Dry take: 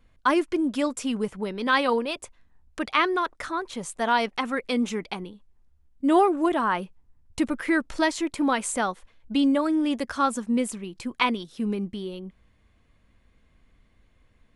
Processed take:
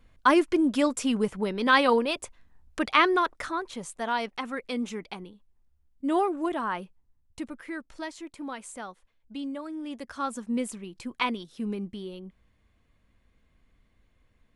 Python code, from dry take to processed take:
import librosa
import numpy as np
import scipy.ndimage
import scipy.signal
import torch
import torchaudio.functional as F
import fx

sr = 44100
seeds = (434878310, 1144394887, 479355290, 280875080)

y = fx.gain(x, sr, db=fx.line((3.18, 1.5), (4.06, -6.0), (6.78, -6.0), (7.7, -13.5), (9.71, -13.5), (10.56, -4.5)))